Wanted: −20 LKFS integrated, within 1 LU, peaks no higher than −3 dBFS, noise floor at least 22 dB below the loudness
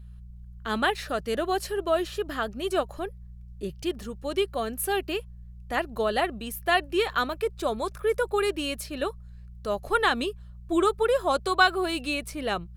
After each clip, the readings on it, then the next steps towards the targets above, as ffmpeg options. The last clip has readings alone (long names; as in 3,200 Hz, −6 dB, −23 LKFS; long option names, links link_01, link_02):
mains hum 60 Hz; hum harmonics up to 180 Hz; level of the hum −42 dBFS; integrated loudness −27.5 LKFS; sample peak −6.0 dBFS; target loudness −20.0 LKFS
→ -af "bandreject=frequency=60:width_type=h:width=4,bandreject=frequency=120:width_type=h:width=4,bandreject=frequency=180:width_type=h:width=4"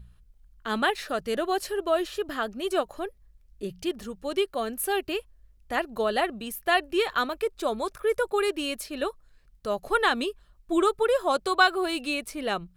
mains hum none found; integrated loudness −27.5 LKFS; sample peak −6.0 dBFS; target loudness −20.0 LKFS
→ -af "volume=7.5dB,alimiter=limit=-3dB:level=0:latency=1"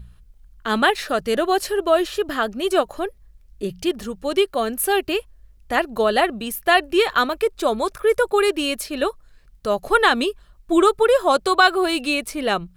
integrated loudness −20.5 LKFS; sample peak −3.0 dBFS; background noise floor −52 dBFS